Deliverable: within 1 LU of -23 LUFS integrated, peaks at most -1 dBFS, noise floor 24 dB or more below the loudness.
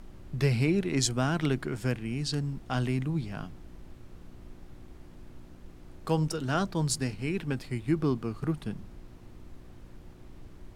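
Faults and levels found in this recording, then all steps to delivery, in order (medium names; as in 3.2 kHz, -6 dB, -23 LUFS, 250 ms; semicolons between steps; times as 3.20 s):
hum 60 Hz; highest harmonic 360 Hz; hum level -57 dBFS; noise floor -50 dBFS; noise floor target -55 dBFS; loudness -30.5 LUFS; peak level -12.5 dBFS; loudness target -23.0 LUFS
-> de-hum 60 Hz, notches 6; noise print and reduce 6 dB; trim +7.5 dB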